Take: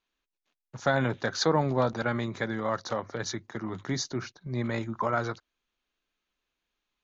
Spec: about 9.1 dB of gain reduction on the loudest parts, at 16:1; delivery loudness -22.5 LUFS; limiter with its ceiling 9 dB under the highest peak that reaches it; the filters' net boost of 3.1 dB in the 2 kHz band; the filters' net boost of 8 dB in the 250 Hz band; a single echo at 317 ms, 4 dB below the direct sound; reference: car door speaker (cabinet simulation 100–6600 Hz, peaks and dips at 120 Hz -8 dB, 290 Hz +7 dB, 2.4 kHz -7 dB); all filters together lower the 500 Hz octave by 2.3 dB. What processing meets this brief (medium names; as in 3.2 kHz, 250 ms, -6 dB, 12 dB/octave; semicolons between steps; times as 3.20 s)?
peaking EQ 250 Hz +7.5 dB; peaking EQ 500 Hz -6 dB; peaking EQ 2 kHz +6 dB; compression 16:1, threshold -28 dBFS; peak limiter -24 dBFS; cabinet simulation 100–6600 Hz, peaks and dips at 120 Hz -8 dB, 290 Hz +7 dB, 2.4 kHz -7 dB; delay 317 ms -4 dB; trim +10.5 dB